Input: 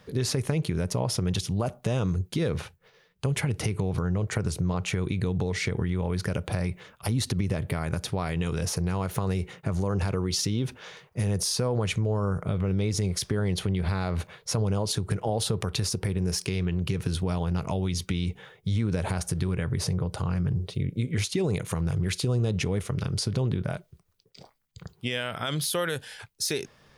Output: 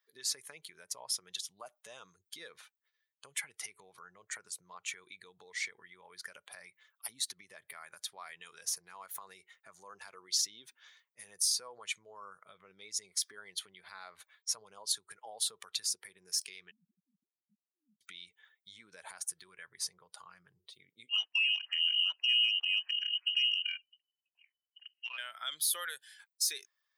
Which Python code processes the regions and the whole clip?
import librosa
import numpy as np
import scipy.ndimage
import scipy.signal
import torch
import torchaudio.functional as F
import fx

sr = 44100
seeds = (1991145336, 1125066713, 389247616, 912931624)

y = fx.chain(x, sr, fx.sine_speech(),
    fx.cheby2_lowpass(hz=570.0, order=4, stop_db=60), at=(16.71, 18.01))
y = fx.chain(y, sr, fx.freq_invert(carrier_hz=3000),
    fx.transformer_sat(knee_hz=1500.0), at=(21.09, 25.18))
y = fx.bin_expand(y, sr, power=1.5)
y = scipy.signal.sosfilt(scipy.signal.butter(2, 1400.0, 'highpass', fs=sr, output='sos'), y)
y = fx.high_shelf(y, sr, hz=5500.0, db=7.5)
y = y * 10.0 ** (-3.5 / 20.0)